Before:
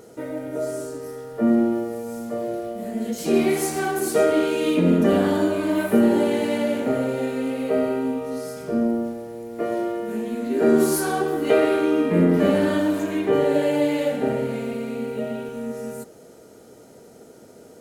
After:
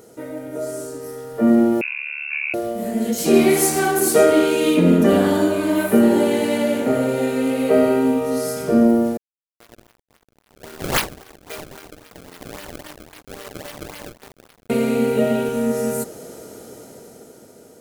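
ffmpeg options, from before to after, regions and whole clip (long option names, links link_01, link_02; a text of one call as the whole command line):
ffmpeg -i in.wav -filter_complex "[0:a]asettb=1/sr,asplit=3[link_01][link_02][link_03];[link_01]atrim=end=1.814[link_04];[link_02]atrim=start=1.81:end=2.54,asetpts=PTS-STARTPTS,afade=type=in:duration=0.004:curve=qsin,afade=type=out:start_time=0.726:duration=0.004:curve=qsin,tremolo=f=73:d=0.974,lowpass=frequency=2500:width_type=q:width=0.5098,lowpass=frequency=2500:width_type=q:width=0.6013,lowpass=frequency=2500:width_type=q:width=0.9,lowpass=frequency=2500:width_type=q:width=2.563,afreqshift=-2900[link_05];[link_03]atrim=start=2.536[link_06];[link_04][link_05]acrossfade=duration=0.004:curve1=hsin:curve2=qsin[link_07];[link_07][link_06]acrossfade=duration=0.004:curve1=qsin:curve2=hsin,asettb=1/sr,asplit=3[link_08][link_09][link_10];[link_08]atrim=end=9.174[link_11];[link_09]atrim=start=9.17:end=14.7,asetpts=PTS-STARTPTS,afade=type=in:duration=0.004:curve=qsin,afade=type=out:start_time=5.526:duration=0.004:curve=qsin,aderivative,acrusher=samples=27:mix=1:aa=0.000001:lfo=1:lforange=43.2:lforate=3.7,aeval=exprs='sgn(val(0))*max(abs(val(0))-0.00668,0)':channel_layout=same[link_12];[link_10]atrim=start=14.696[link_13];[link_11][link_12]acrossfade=duration=0.004:curve1=hsin:curve2=qsin[link_14];[link_14][link_13]acrossfade=duration=0.004:curve1=qsin:curve2=hsin,highshelf=frequency=7100:gain=7,dynaudnorm=framelen=250:gausssize=11:maxgain=11.5dB,volume=-1dB" out.wav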